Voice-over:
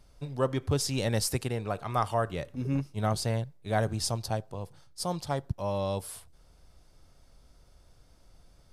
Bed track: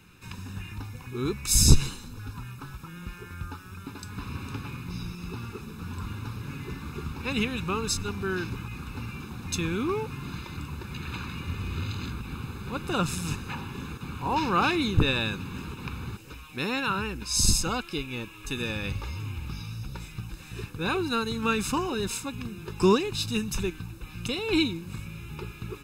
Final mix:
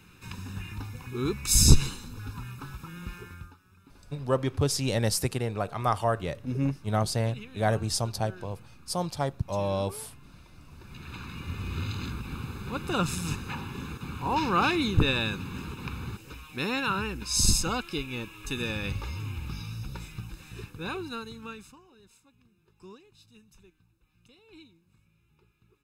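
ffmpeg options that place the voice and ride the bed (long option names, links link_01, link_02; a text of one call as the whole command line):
ffmpeg -i stem1.wav -i stem2.wav -filter_complex "[0:a]adelay=3900,volume=2dB[link_01];[1:a]volume=16.5dB,afade=type=out:start_time=3.16:duration=0.39:silence=0.141254,afade=type=in:start_time=10.61:duration=1.2:silence=0.149624,afade=type=out:start_time=19.9:duration=1.87:silence=0.0421697[link_02];[link_01][link_02]amix=inputs=2:normalize=0" out.wav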